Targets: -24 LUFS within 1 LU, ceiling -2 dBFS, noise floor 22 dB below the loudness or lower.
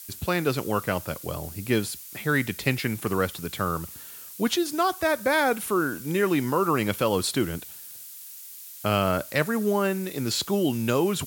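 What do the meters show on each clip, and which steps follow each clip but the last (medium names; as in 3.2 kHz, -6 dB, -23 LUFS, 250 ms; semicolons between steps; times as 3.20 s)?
noise floor -43 dBFS; noise floor target -48 dBFS; loudness -26.0 LUFS; peak level -6.0 dBFS; loudness target -24.0 LUFS
-> noise reduction 6 dB, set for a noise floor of -43 dBFS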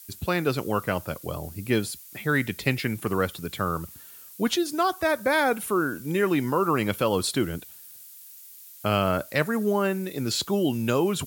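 noise floor -47 dBFS; noise floor target -48 dBFS
-> noise reduction 6 dB, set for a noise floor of -47 dBFS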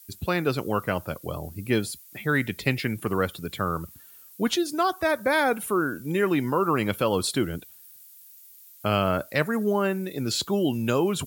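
noise floor -50 dBFS; loudness -26.0 LUFS; peak level -5.5 dBFS; loudness target -24.0 LUFS
-> trim +2 dB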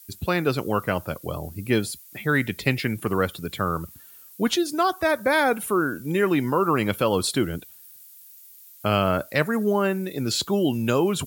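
loudness -24.0 LUFS; peak level -3.5 dBFS; noise floor -48 dBFS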